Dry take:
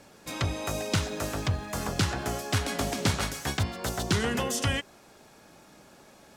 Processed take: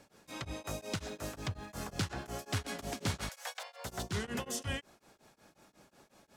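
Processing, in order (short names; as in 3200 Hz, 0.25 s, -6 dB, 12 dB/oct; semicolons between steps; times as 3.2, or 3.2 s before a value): soft clip -17.5 dBFS, distortion -20 dB; 3.29–3.85 Chebyshev high-pass 480 Hz, order 8; beating tremolo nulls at 5.5 Hz; gain -6 dB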